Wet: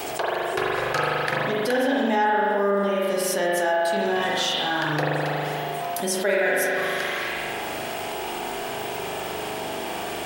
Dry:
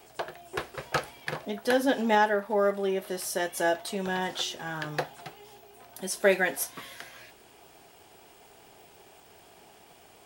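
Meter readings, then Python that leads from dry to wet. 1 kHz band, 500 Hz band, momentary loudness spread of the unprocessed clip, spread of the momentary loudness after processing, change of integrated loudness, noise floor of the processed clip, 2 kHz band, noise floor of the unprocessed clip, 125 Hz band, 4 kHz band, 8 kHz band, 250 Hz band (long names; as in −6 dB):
+7.5 dB, +6.0 dB, 17 LU, 9 LU, +4.5 dB, −31 dBFS, +7.0 dB, −56 dBFS, +8.5 dB, +8.5 dB, +5.0 dB, +5.5 dB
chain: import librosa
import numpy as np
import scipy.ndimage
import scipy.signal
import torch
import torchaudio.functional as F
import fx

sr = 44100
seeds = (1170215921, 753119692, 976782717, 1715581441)

y = fx.low_shelf(x, sr, hz=120.0, db=-8.0)
y = fx.rev_spring(y, sr, rt60_s=1.5, pass_ms=(40,), chirp_ms=40, drr_db=-4.5)
y = fx.env_flatten(y, sr, amount_pct=70)
y = F.gain(torch.from_numpy(y), -6.0).numpy()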